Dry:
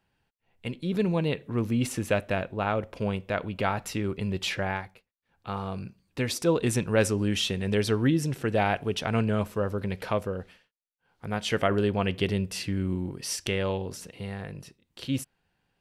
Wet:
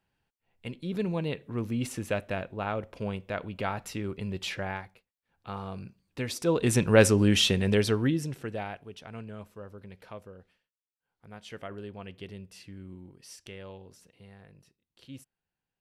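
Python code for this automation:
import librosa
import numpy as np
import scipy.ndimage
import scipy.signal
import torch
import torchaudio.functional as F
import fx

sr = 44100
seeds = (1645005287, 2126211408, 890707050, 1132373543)

y = fx.gain(x, sr, db=fx.line((6.35, -4.5), (6.89, 4.5), (7.54, 4.5), (8.46, -8.0), (8.86, -16.0)))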